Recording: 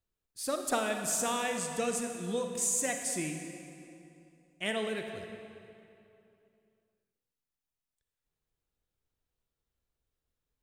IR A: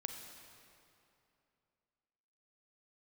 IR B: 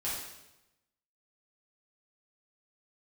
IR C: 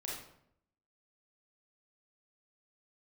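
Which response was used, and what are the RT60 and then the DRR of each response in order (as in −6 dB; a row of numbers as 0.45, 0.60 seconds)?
A; 2.8, 0.95, 0.70 seconds; 4.5, −9.5, −4.5 decibels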